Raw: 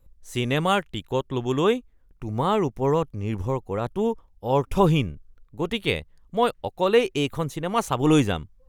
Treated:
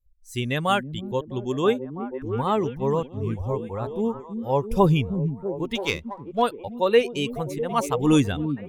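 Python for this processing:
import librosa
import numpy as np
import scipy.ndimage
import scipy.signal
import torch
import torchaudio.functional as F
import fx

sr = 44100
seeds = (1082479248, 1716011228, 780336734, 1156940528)

y = fx.bin_expand(x, sr, power=1.5)
y = fx.echo_stepped(y, sr, ms=327, hz=200.0, octaves=0.7, feedback_pct=70, wet_db=-4.5)
y = fx.running_max(y, sr, window=3, at=(5.75, 6.42))
y = y * librosa.db_to_amplitude(2.0)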